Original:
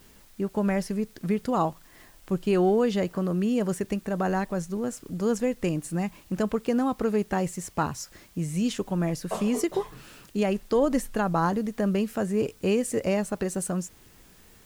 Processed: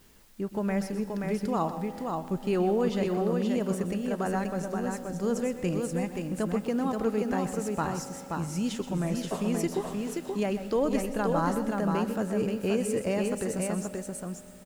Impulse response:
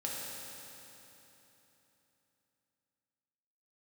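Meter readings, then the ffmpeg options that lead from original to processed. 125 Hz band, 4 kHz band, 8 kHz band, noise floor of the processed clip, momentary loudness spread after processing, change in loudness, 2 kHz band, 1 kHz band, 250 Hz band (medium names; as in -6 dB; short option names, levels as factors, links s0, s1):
-2.0 dB, -2.0 dB, -2.0 dB, -44 dBFS, 6 LU, -2.5 dB, -2.0 dB, -2.0 dB, -2.0 dB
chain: -filter_complex "[0:a]aecho=1:1:127|528:0.237|0.631,asplit=2[s0][s1];[1:a]atrim=start_sample=2205,adelay=118[s2];[s1][s2]afir=irnorm=-1:irlink=0,volume=0.158[s3];[s0][s3]amix=inputs=2:normalize=0,volume=0.631"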